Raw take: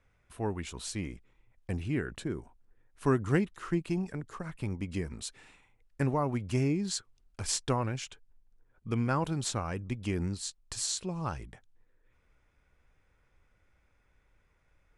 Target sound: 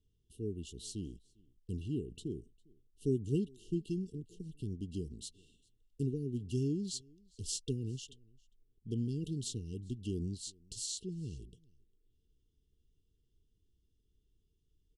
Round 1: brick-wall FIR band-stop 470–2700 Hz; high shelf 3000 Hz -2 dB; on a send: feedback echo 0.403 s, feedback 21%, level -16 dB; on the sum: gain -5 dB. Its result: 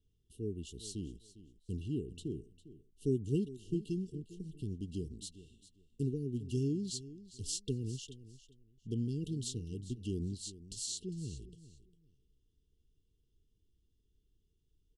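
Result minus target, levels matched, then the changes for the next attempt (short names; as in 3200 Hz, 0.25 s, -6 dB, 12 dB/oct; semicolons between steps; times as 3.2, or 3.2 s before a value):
echo-to-direct +11.5 dB
change: feedback echo 0.403 s, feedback 21%, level -27.5 dB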